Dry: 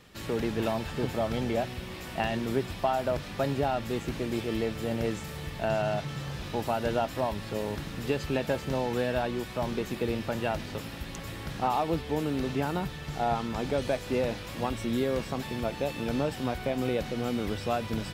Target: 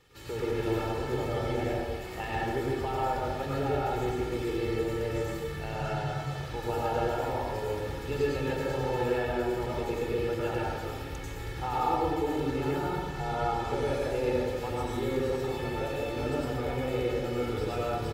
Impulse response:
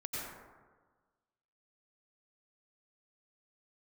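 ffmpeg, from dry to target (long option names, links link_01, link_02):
-filter_complex "[0:a]aecho=1:1:2.3:0.62[link_01];[1:a]atrim=start_sample=2205,asetrate=43218,aresample=44100[link_02];[link_01][link_02]afir=irnorm=-1:irlink=0,volume=-4dB"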